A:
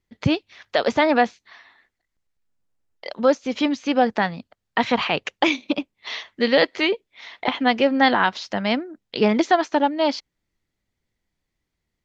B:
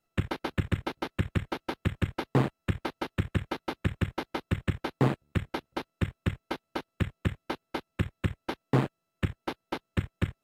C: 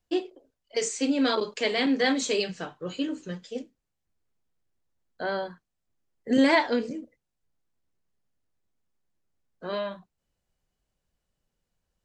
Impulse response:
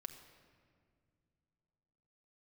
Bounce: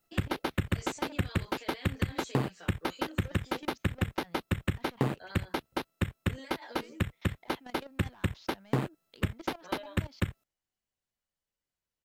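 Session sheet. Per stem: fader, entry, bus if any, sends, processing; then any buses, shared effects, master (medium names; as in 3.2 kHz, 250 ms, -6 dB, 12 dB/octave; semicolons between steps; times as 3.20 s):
-16.0 dB, 0.00 s, muted 5.44–6.78 s, bus A, no send, saturation -17.5 dBFS, distortion -9 dB; level held to a coarse grid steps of 21 dB
+1.0 dB, 0.00 s, no bus, no send, treble shelf 9.7 kHz +11 dB
-7.5 dB, 0.00 s, bus A, no send, high-pass 840 Hz 6 dB/octave; endless flanger 9.8 ms -0.3 Hz
bus A: 0.0 dB, compressor with a negative ratio -41 dBFS, ratio -0.5; peak limiter -37.5 dBFS, peak gain reduction 9.5 dB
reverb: none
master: compression, threshold -24 dBFS, peak gain reduction 7 dB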